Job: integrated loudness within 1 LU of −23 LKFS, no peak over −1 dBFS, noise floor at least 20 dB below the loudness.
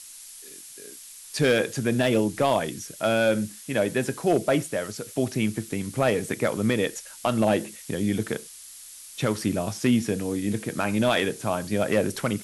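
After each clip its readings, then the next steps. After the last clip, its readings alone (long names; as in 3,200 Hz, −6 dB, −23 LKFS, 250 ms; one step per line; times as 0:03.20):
share of clipped samples 0.3%; peaks flattened at −13.0 dBFS; background noise floor −45 dBFS; target noise floor −46 dBFS; integrated loudness −25.5 LKFS; sample peak −13.0 dBFS; target loudness −23.0 LKFS
→ clipped peaks rebuilt −13 dBFS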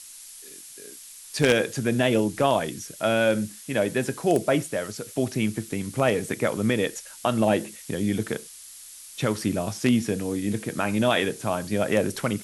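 share of clipped samples 0.0%; background noise floor −45 dBFS; target noise floor −46 dBFS
→ broadband denoise 6 dB, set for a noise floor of −45 dBFS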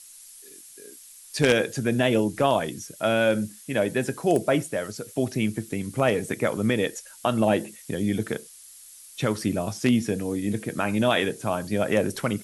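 background noise floor −48 dBFS; integrated loudness −25.5 LKFS; sample peak −4.0 dBFS; target loudness −23.0 LKFS
→ level +2.5 dB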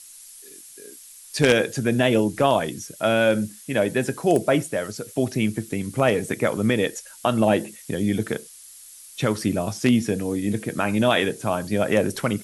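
integrated loudness −23.0 LKFS; sample peak −1.5 dBFS; background noise floor −45 dBFS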